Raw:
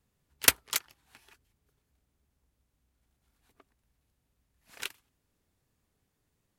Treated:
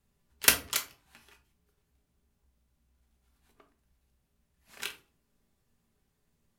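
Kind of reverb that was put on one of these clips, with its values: simulated room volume 230 m³, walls furnished, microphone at 1.2 m; trim -1 dB

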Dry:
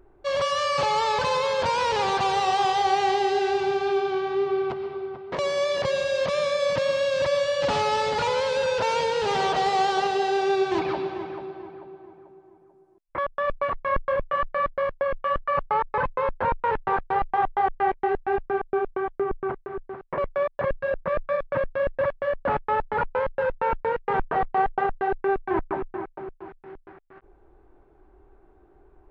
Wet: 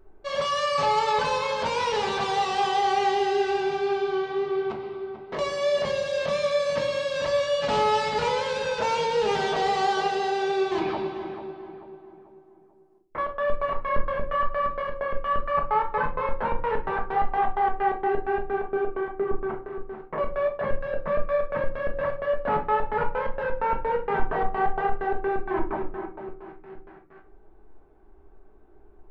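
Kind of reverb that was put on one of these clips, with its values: simulated room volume 290 m³, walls furnished, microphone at 1.5 m; trim -3.5 dB

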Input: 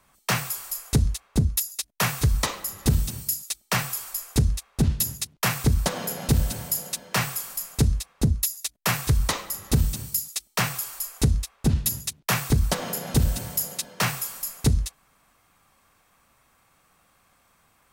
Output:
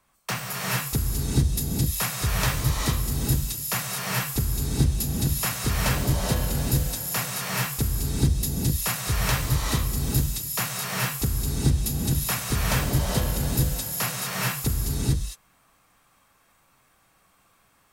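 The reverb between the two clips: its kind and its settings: gated-style reverb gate 480 ms rising, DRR -4.5 dB; trim -5.5 dB

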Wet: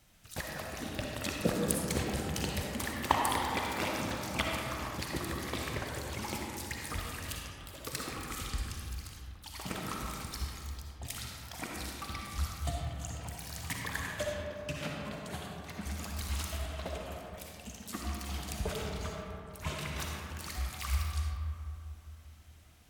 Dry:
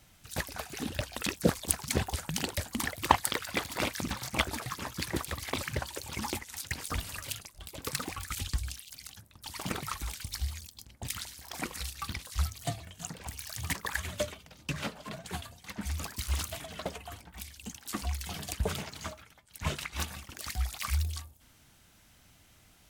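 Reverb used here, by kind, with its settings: algorithmic reverb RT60 2.9 s, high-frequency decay 0.35×, pre-delay 20 ms, DRR -1.5 dB; trim -5 dB

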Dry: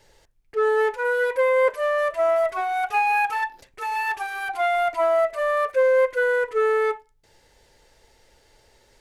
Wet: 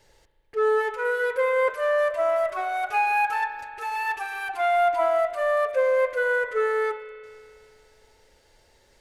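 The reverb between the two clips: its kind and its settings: spring tank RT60 2.4 s, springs 37 ms, chirp 35 ms, DRR 8 dB; trim -2.5 dB

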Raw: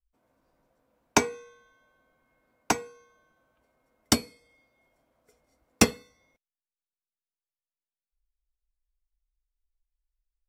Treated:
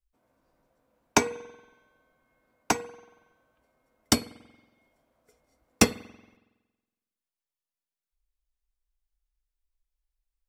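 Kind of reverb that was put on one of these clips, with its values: spring tank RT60 1.2 s, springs 46 ms, chirp 75 ms, DRR 19 dB

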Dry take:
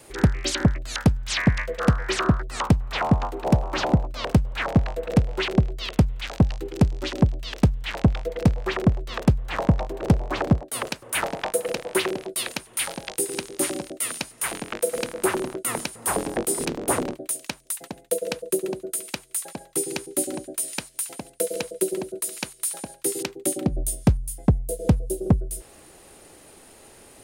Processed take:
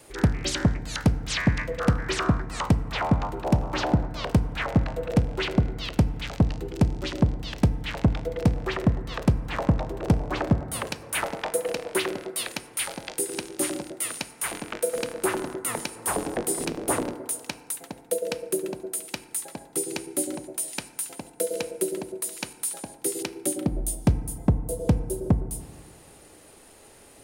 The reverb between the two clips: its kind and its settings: FDN reverb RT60 2.1 s, low-frequency decay 0.8×, high-frequency decay 0.3×, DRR 11.5 dB; trim -2.5 dB

